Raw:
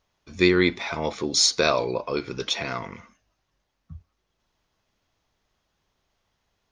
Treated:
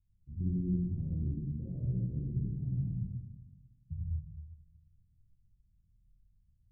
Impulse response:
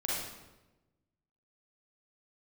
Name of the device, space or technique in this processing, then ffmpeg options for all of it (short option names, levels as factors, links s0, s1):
club heard from the street: -filter_complex "[0:a]alimiter=limit=0.211:level=0:latency=1,lowpass=f=150:w=0.5412,lowpass=f=150:w=1.3066[s0];[1:a]atrim=start_sample=2205[s1];[s0][s1]afir=irnorm=-1:irlink=0,volume=1.5"